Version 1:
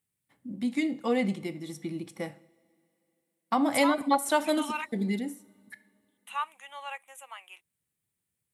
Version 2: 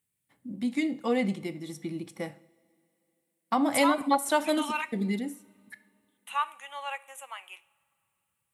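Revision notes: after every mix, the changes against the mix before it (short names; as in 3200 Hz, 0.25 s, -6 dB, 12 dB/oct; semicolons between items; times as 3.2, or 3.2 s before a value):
second voice: send on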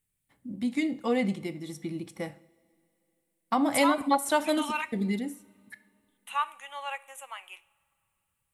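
master: remove HPF 110 Hz 12 dB/oct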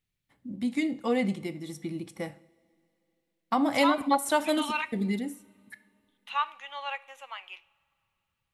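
second voice: add resonant high shelf 6600 Hz -12 dB, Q 3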